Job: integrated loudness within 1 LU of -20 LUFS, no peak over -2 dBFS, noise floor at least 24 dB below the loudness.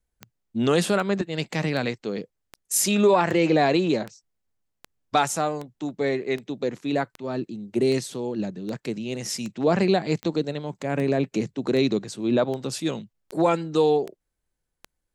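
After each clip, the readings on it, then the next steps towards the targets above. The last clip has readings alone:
clicks found 20; loudness -25.0 LUFS; peak level -8.5 dBFS; loudness target -20.0 LUFS
-> de-click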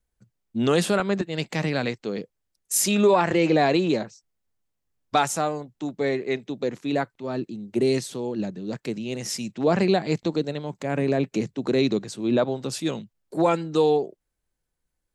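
clicks found 0; loudness -24.5 LUFS; peak level -8.5 dBFS; loudness target -20.0 LUFS
-> trim +4.5 dB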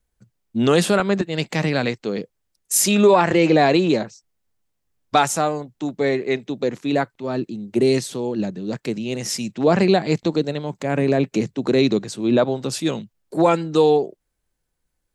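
loudness -20.0 LUFS; peak level -4.0 dBFS; noise floor -75 dBFS

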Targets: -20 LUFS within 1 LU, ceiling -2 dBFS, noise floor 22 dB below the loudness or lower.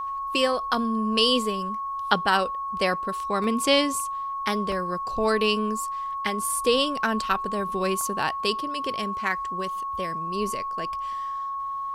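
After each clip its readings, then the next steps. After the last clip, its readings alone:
dropouts 3; longest dropout 1.3 ms; steady tone 1.1 kHz; tone level -28 dBFS; loudness -25.5 LUFS; peak level -5.0 dBFS; loudness target -20.0 LUFS
-> interpolate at 3.44/4.72/8.01 s, 1.3 ms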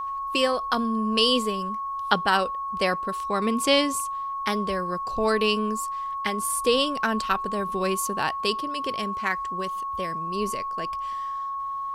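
dropouts 0; steady tone 1.1 kHz; tone level -28 dBFS
-> band-stop 1.1 kHz, Q 30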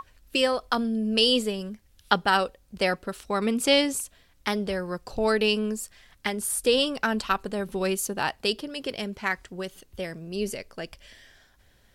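steady tone not found; loudness -26.5 LUFS; peak level -5.0 dBFS; loudness target -20.0 LUFS
-> trim +6.5 dB; peak limiter -2 dBFS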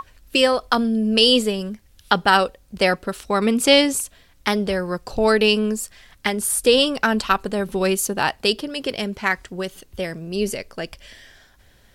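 loudness -20.0 LUFS; peak level -2.0 dBFS; noise floor -54 dBFS

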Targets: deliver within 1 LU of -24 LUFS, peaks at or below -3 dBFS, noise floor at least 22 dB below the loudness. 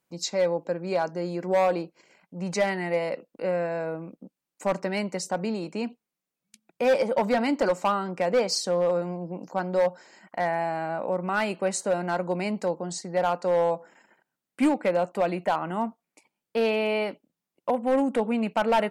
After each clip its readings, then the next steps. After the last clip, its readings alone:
clipped samples 1.1%; clipping level -16.5 dBFS; loudness -27.0 LUFS; peak level -16.5 dBFS; loudness target -24.0 LUFS
-> clip repair -16.5 dBFS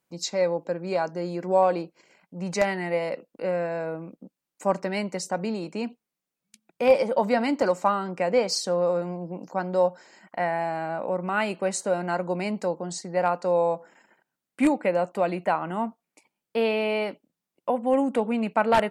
clipped samples 0.0%; loudness -26.5 LUFS; peak level -7.5 dBFS; loudness target -24.0 LUFS
-> trim +2.5 dB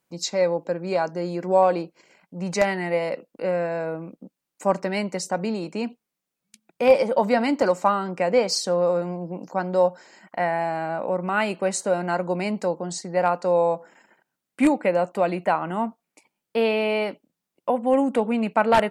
loudness -24.0 LUFS; peak level -5.0 dBFS; noise floor -84 dBFS

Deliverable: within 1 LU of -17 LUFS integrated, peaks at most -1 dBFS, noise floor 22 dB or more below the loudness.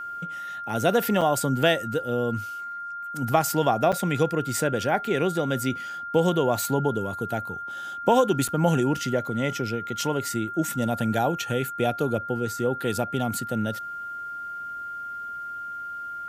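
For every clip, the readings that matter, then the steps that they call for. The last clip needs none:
dropouts 3; longest dropout 6.0 ms; steady tone 1.4 kHz; tone level -32 dBFS; loudness -26.0 LUFS; peak level -4.5 dBFS; loudness target -17.0 LUFS
-> interpolate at 1.21/3.92/8.48 s, 6 ms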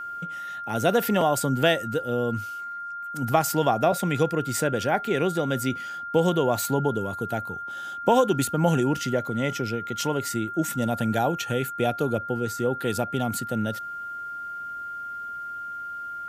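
dropouts 0; steady tone 1.4 kHz; tone level -32 dBFS
-> band-stop 1.4 kHz, Q 30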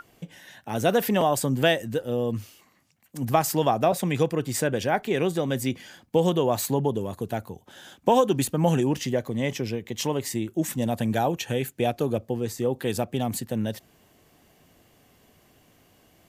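steady tone not found; loudness -25.5 LUFS; peak level -5.0 dBFS; loudness target -17.0 LUFS
-> trim +8.5 dB; peak limiter -1 dBFS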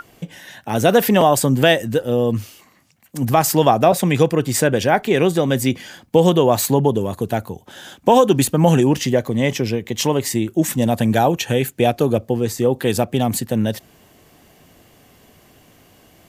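loudness -17.5 LUFS; peak level -1.0 dBFS; noise floor -52 dBFS

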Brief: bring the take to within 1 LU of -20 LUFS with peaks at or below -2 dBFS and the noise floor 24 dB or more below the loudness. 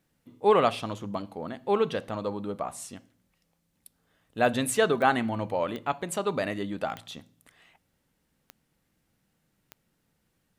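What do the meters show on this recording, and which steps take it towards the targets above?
clicks found 5; loudness -28.0 LUFS; peak level -7.5 dBFS; loudness target -20.0 LUFS
-> de-click; trim +8 dB; peak limiter -2 dBFS

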